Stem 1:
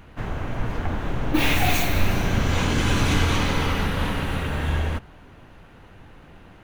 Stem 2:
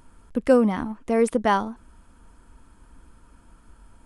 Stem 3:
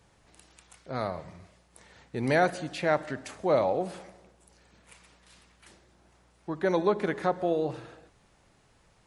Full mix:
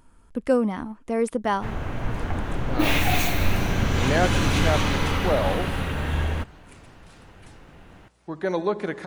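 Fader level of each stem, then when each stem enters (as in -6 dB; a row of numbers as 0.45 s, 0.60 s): -1.0 dB, -3.5 dB, +0.5 dB; 1.45 s, 0.00 s, 1.80 s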